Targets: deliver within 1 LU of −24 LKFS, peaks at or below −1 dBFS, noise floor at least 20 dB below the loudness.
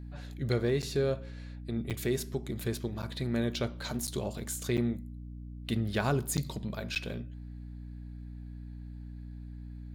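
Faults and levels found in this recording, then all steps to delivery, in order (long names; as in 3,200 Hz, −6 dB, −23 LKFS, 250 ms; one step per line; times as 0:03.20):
number of dropouts 7; longest dropout 7.9 ms; mains hum 60 Hz; hum harmonics up to 300 Hz; level of the hum −40 dBFS; integrated loudness −33.5 LKFS; sample peak −15.5 dBFS; target loudness −24.0 LKFS
→ repair the gap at 0:00.82/0:01.90/0:03.02/0:04.07/0:04.77/0:06.37/0:06.95, 7.9 ms
hum removal 60 Hz, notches 5
level +9.5 dB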